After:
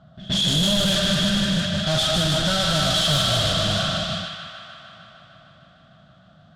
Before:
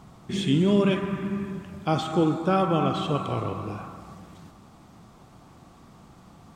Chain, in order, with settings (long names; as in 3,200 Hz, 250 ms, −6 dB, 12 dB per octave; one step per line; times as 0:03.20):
mid-hump overdrive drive 36 dB, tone 1,800 Hz, clips at −10 dBFS
noise gate −23 dBFS, range −21 dB
drawn EQ curve 160 Hz 0 dB, 440 Hz −28 dB, 630 Hz −2 dB, 910 Hz −30 dB, 1,500 Hz −6 dB, 2,300 Hz −19 dB, 3,300 Hz +6 dB, 5,900 Hz +3 dB, 12,000 Hz +9 dB
in parallel at 0 dB: compressor whose output falls as the input rises −23 dBFS
on the sum: echo ahead of the sound 122 ms −18 dB
soft clipping −17 dBFS, distortion −12 dB
on a send: delay with a high-pass on its return 152 ms, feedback 80%, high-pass 1,500 Hz, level −3.5 dB
on the sum: low-pass that shuts in the quiet parts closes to 1,500 Hz, open at −15 dBFS